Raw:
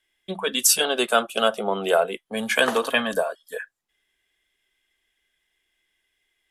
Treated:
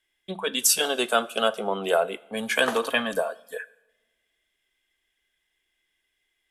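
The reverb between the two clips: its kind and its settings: two-slope reverb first 0.8 s, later 2.2 s, from -23 dB, DRR 18 dB; gain -2.5 dB

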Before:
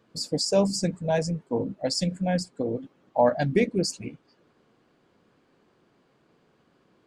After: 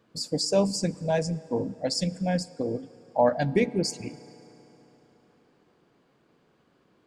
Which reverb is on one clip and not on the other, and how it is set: FDN reverb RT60 3.9 s, high-frequency decay 0.7×, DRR 19 dB; gain -1 dB

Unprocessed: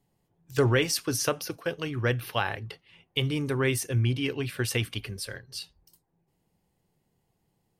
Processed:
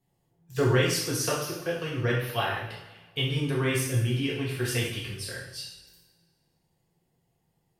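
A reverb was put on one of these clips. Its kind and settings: two-slope reverb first 0.7 s, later 1.8 s, from -16 dB, DRR -6 dB; gain -6.5 dB

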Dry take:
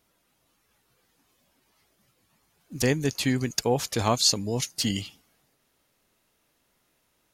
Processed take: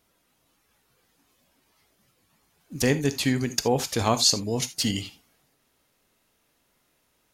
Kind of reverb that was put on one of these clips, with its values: non-linear reverb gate 0.1 s flat, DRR 11.5 dB; gain +1 dB

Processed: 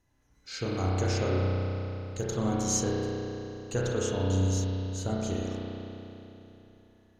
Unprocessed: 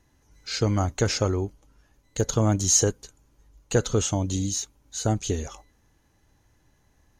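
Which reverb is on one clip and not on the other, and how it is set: spring tank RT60 3.3 s, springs 32 ms, chirp 30 ms, DRR -5.5 dB; gain -10 dB

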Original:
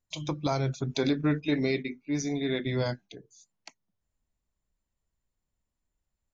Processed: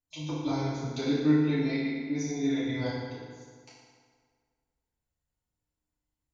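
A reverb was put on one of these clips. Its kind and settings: FDN reverb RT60 1.8 s, low-frequency decay 1×, high-frequency decay 0.7×, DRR -10 dB; gain -12.5 dB

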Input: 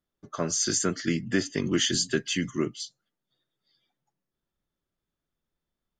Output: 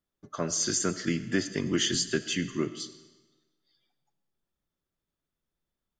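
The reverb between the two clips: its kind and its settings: digital reverb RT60 1.2 s, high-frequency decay 0.95×, pre-delay 35 ms, DRR 13.5 dB; gain -2 dB

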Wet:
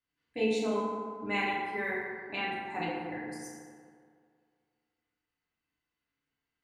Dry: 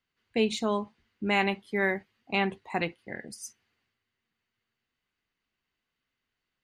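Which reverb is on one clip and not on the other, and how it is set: FDN reverb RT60 2.1 s, low-frequency decay 0.9×, high-frequency decay 0.4×, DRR -7.5 dB; gain -11.5 dB

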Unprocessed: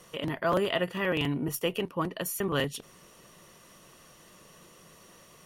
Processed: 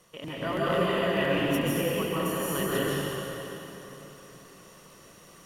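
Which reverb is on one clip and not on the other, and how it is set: plate-style reverb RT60 3.7 s, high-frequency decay 0.8×, pre-delay 0.12 s, DRR -8.5 dB; gain -6.5 dB

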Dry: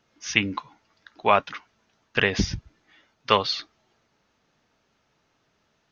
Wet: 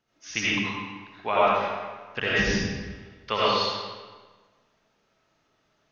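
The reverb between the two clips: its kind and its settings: digital reverb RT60 1.4 s, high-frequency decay 0.8×, pre-delay 45 ms, DRR -9 dB; gain -9.5 dB

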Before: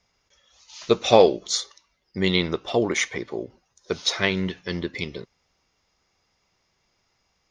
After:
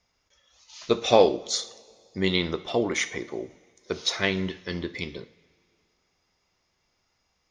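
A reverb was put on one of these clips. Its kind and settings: two-slope reverb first 0.44 s, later 2.3 s, from -19 dB, DRR 11 dB; gain -3 dB

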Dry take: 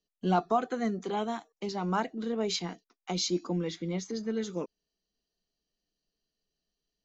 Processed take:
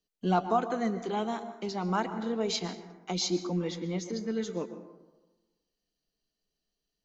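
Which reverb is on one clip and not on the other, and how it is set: plate-style reverb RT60 1.2 s, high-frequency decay 0.4×, pre-delay 0.105 s, DRR 10.5 dB

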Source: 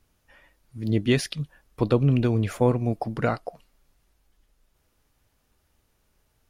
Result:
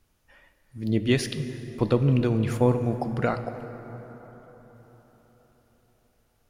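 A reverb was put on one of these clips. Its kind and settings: plate-style reverb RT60 4.6 s, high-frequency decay 0.45×, DRR 9 dB; gain -1 dB

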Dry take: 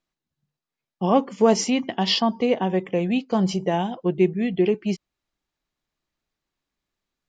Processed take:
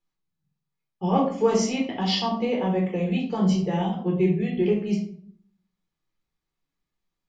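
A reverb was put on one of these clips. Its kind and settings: shoebox room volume 610 m³, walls furnished, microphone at 4.1 m; gain -9 dB

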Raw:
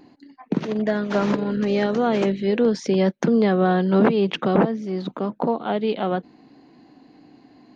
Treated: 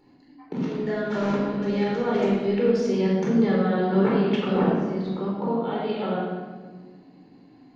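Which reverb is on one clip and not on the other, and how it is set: shoebox room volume 1400 m³, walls mixed, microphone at 4.3 m; gain -11.5 dB

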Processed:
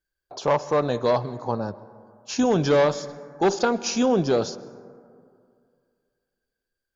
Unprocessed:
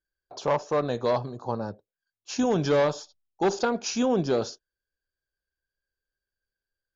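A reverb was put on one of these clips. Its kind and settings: plate-style reverb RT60 2.3 s, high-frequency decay 0.3×, pre-delay 0.11 s, DRR 17.5 dB; gain +3.5 dB

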